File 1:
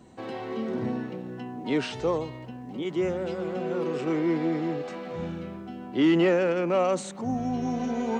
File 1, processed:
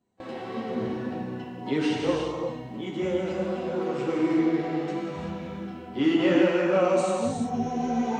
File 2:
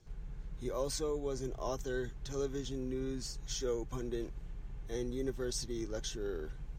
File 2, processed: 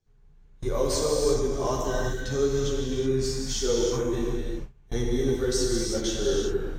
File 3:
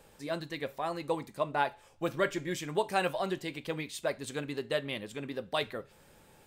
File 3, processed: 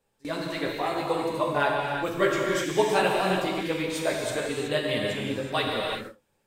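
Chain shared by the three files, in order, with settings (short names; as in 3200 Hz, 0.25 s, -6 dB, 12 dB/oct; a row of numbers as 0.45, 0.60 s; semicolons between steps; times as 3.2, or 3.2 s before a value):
chorus voices 2, 1.5 Hz, delay 12 ms, depth 3 ms; non-linear reverb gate 0.4 s flat, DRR -1.5 dB; gate with hold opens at -34 dBFS; match loudness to -27 LUFS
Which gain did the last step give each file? +0.5, +11.0, +7.0 dB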